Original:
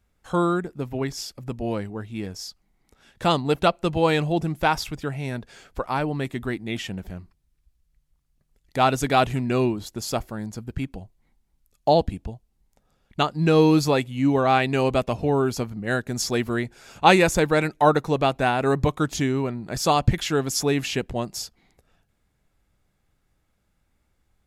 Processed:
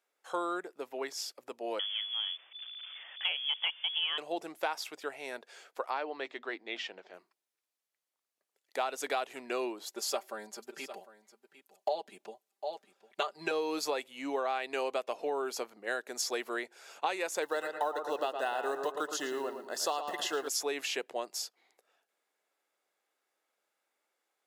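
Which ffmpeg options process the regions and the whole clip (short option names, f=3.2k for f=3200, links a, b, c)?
-filter_complex "[0:a]asettb=1/sr,asplit=3[a][b][c];[a]atrim=end=1.794[d];[b]atrim=start=1.79:end=4.18,asetpts=PTS-STARTPTS,afade=t=in:d=0.004:c=qsin,afade=t=out:st=2.386:d=0.004:c=qsin,aeval=exprs='val(0)+0.5*0.0188*sgn(val(0))':c=same,adynamicsmooth=sensitivity=3.5:basefreq=1.2k,lowpass=f=3k:t=q:w=0.5098,lowpass=f=3k:t=q:w=0.6013,lowpass=f=3k:t=q:w=0.9,lowpass=f=3k:t=q:w=2.563,afreqshift=-3500[e];[c]atrim=start=4.176[f];[d][e]acrossfade=d=0.004:c1=hsin:c2=qsin[g];[g][f]acrossfade=d=0.004:c1=qsin:c2=hsin,asettb=1/sr,asplit=3[h][i][j];[h]atrim=end=5.904[k];[i]atrim=start=5.9:end=7.14,asetpts=PTS-STARTPTS,afade=t=in:d=0.004:c=qsin,afade=t=out:st=1.236:d=0.004:c=qsin,lowpass=f=5.3k:w=0.5412,lowpass=f=5.3k:w=1.3066,lowshelf=f=160:g=-7,bandreject=f=50:t=h:w=6,bandreject=f=100:t=h:w=6,bandreject=f=150:t=h:w=6,bandreject=f=200:t=h:w=6,bandreject=f=250:t=h:w=6[l];[j]atrim=start=7.136[m];[k][l]acrossfade=d=0.004:c1=hsin:c2=qsin[n];[n][m]acrossfade=d=0.004:c1=qsin:c2=hsin,asettb=1/sr,asplit=3[o][p][q];[o]atrim=end=9.874[r];[p]atrim=start=9.87:end=13.51,asetpts=PTS-STARTPTS,afade=t=in:d=0.004:c=qsin,afade=t=out:st=3.636:d=0.004:c=qsin,aecho=1:1:5.1:0.9,atrim=end_sample=160524,aecho=1:1:753:0.15,atrim=end_sample=160524[s];[q]atrim=start=13.506[t];[r][s]acrossfade=d=0.004:c1=hsin:c2=qsin[u];[u][t]acrossfade=d=0.004:c1=qsin:c2=hsin,asettb=1/sr,asplit=3[v][w][x];[v]atrim=end=17.424[y];[w]atrim=start=17.42:end=20.48,asetpts=PTS-STARTPTS,afade=t=in:d=0.004:c=qsin,afade=t=out:st=3.056:d=0.004:c=qsin,acrusher=bits=8:mode=log:mix=0:aa=0.000001,asuperstop=centerf=2300:order=20:qfactor=5.6,asplit=2[z][aa];[aa]adelay=112,lowpass=f=2.7k:p=1,volume=-8dB,asplit=2[ab][ac];[ac]adelay=112,lowpass=f=2.7k:p=1,volume=0.41,asplit=2[ad][ae];[ae]adelay=112,lowpass=f=2.7k:p=1,volume=0.41,asplit=2[af][ag];[ag]adelay=112,lowpass=f=2.7k:p=1,volume=0.41,asplit=2[ah][ai];[ai]adelay=112,lowpass=f=2.7k:p=1,volume=0.41[aj];[z][ab][ad][af][ah][aj]amix=inputs=6:normalize=0,atrim=end_sample=134946[ak];[x]atrim=start=20.476[al];[y][ak]acrossfade=d=0.004:c1=hsin:c2=qsin[am];[am][al]acrossfade=d=0.004:c1=qsin:c2=hsin,highpass=f=410:w=0.5412,highpass=f=410:w=1.3066,acompressor=threshold=-24dB:ratio=10,volume=-5dB"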